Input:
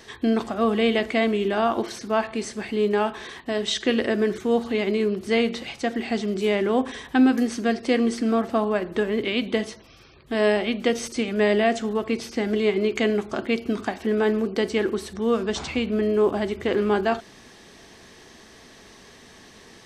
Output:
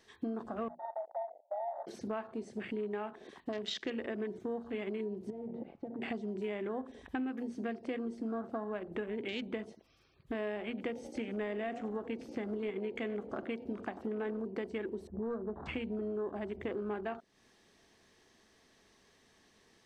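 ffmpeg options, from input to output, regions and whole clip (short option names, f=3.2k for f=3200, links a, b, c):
-filter_complex "[0:a]asettb=1/sr,asplit=3[a][b][c];[a]atrim=end=0.684[d];[b]atrim=start=0.68:end=1.87,asetpts=PTS-STARTPTS,afade=t=in:d=0.004:c=qsin,afade=t=out:st=1.186:d=0.004:c=qsin,aeval=exprs='(mod(4.47*val(0)+1,2)-1)/4.47':c=same,asuperpass=centerf=710:order=20:qfactor=1.9[e];[c]atrim=start=1.866[f];[d][e]acrossfade=d=0.004:c1=hsin:c2=qsin[g];[g][f]acrossfade=d=0.004:c1=qsin:c2=hsin,asettb=1/sr,asplit=3[h][i][j];[h]atrim=end=5.304[k];[i]atrim=start=5.3:end=6.02,asetpts=PTS-STARTPTS,afade=t=in:d=0.004:c=qsin,afade=t=out:st=0.716:d=0.004:c=qsin,lowpass=1k,aeval=exprs='clip(val(0),-1,0.0668)':c=same,acompressor=threshold=-33dB:ratio=8:attack=3.2:release=140:knee=1:detection=peak[l];[j]atrim=start=6.016[m];[k][l]acrossfade=d=0.004:c1=hsin:c2=qsin[n];[n][m]acrossfade=d=0.004:c1=qsin:c2=hsin,asettb=1/sr,asplit=3[o][p][q];[o]atrim=end=10.684[r];[p]atrim=start=10.68:end=14.42,asetpts=PTS-STARTPTS,afade=t=in:d=0.004:c=qsin,afade=t=out:st=3.736:d=0.004:c=qsin,aeval=exprs='clip(val(0),-1,0.158)':c=same,asplit=6[s][t][u][v][w][x];[t]adelay=93,afreqshift=35,volume=-16dB[y];[u]adelay=186,afreqshift=70,volume=-20.9dB[z];[v]adelay=279,afreqshift=105,volume=-25.8dB[aa];[w]adelay=372,afreqshift=140,volume=-30.6dB[ab];[x]adelay=465,afreqshift=175,volume=-35.5dB[ac];[s][y][z][aa][ab][ac]amix=inputs=6:normalize=0,atrim=end_sample=164934[ad];[q]atrim=start=14.416[ae];[r][ad]acrossfade=d=0.004:c1=hsin:c2=qsin[af];[af][ae]acrossfade=d=0.004:c1=qsin:c2=hsin,asettb=1/sr,asplit=3[ag][ah][ai];[ag]atrim=end=15.074[aj];[ah]atrim=start=15.07:end=15.66,asetpts=PTS-STARTPTS,afade=t=in:d=0.004:c=qsin,afade=t=out:st=0.586:d=0.004:c=qsin,lowpass=f=1.2k:w=0.5412,lowpass=f=1.2k:w=1.3066,asoftclip=type=hard:threshold=-17dB[ak];[ai]atrim=start=15.656[al];[aj][ak]acrossfade=d=0.004:c1=hsin:c2=qsin[am];[am][al]acrossfade=d=0.004:c1=qsin:c2=hsin,bandreject=f=60:t=h:w=6,bandreject=f=120:t=h:w=6,bandreject=f=180:t=h:w=6,bandreject=f=240:t=h:w=6,afwtdn=0.0224,acompressor=threshold=-35dB:ratio=5,volume=-1.5dB"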